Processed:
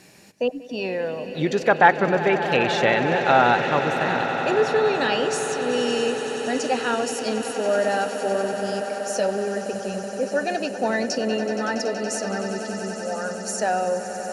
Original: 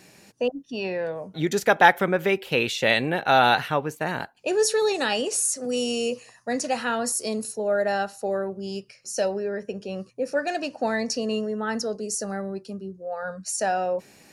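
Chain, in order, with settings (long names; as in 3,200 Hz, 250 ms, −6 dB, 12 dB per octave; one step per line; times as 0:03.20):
treble cut that deepens with the level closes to 2,100 Hz, closed at −16.5 dBFS
echo that builds up and dies away 94 ms, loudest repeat 8, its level −15 dB
level +1.5 dB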